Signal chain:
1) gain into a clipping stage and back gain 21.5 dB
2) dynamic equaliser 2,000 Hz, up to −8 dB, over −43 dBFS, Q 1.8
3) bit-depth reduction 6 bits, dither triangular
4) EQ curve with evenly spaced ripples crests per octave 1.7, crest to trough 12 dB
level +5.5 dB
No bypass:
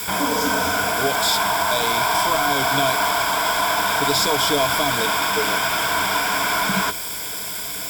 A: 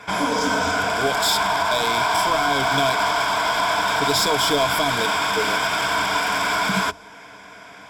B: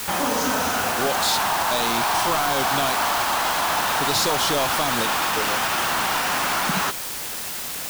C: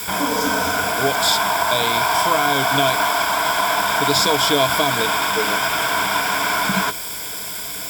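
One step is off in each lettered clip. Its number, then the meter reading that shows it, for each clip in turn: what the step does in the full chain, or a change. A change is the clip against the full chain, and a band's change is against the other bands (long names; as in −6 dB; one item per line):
3, distortion level −7 dB
4, change in crest factor −4.5 dB
1, distortion level −12 dB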